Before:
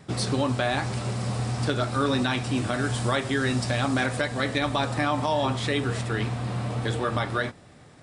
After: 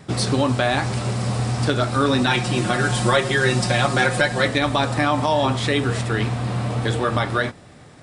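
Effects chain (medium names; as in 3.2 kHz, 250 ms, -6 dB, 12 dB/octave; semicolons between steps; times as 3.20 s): 2.26–4.48 s: comb 5.6 ms, depth 86%; trim +5.5 dB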